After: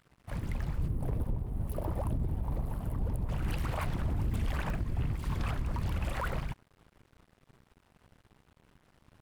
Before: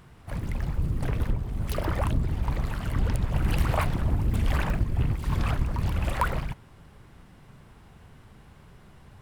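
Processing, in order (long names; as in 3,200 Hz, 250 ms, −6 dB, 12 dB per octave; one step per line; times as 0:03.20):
brickwall limiter −20 dBFS, peak gain reduction 11 dB
0:00.88–0:03.29: flat-topped bell 3,100 Hz −14.5 dB 2.8 octaves
dead-zone distortion −49.5 dBFS
level −3.5 dB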